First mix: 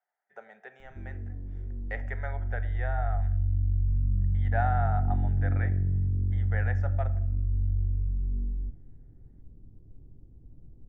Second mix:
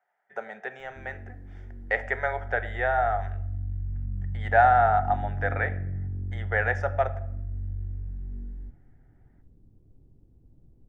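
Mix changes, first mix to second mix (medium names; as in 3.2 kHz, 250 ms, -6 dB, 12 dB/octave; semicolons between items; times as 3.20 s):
speech +11.5 dB; background: add tilt EQ +1.5 dB/octave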